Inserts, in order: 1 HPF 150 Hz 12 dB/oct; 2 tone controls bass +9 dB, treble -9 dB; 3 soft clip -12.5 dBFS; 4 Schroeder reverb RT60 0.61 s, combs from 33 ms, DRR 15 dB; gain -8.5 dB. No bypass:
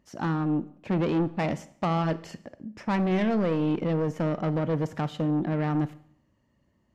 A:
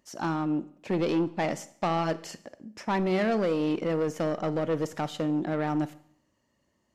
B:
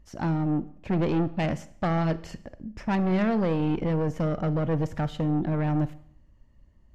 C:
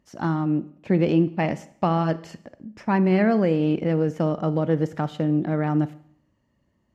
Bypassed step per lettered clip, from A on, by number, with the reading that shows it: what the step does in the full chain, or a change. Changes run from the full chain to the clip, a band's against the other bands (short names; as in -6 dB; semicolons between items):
2, 125 Hz band -7.0 dB; 1, 125 Hz band +2.5 dB; 3, distortion -11 dB